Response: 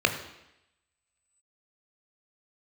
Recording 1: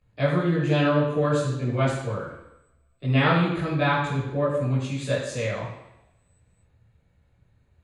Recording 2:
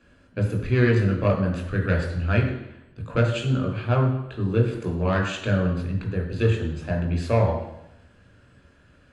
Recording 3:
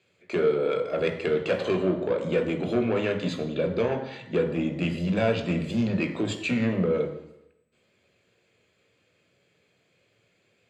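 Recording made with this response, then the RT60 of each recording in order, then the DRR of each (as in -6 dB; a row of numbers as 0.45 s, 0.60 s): 3; 0.85 s, 0.85 s, 0.85 s; -8.5 dB, 1.0 dB, 5.5 dB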